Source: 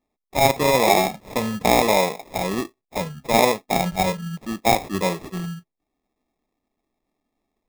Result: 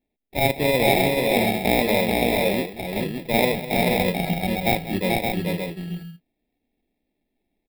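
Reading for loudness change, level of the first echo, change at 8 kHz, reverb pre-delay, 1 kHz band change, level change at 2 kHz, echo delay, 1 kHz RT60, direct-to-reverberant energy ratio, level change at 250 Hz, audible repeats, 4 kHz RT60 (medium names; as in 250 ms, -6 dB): -0.5 dB, -13.5 dB, -6.0 dB, no reverb, -4.5 dB, +1.5 dB, 202 ms, no reverb, no reverb, +2.0 dB, 3, no reverb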